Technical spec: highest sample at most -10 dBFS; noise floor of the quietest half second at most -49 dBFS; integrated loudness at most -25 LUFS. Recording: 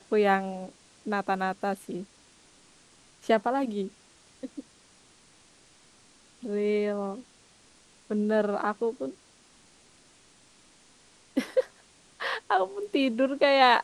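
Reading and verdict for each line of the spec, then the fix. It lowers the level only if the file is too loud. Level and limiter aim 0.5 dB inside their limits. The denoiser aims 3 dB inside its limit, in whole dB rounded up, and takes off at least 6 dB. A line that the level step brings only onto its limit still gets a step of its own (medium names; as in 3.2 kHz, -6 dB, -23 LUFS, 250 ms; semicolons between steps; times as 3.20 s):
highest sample -7.0 dBFS: fail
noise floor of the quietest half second -59 dBFS: pass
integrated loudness -28.0 LUFS: pass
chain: peak limiter -10.5 dBFS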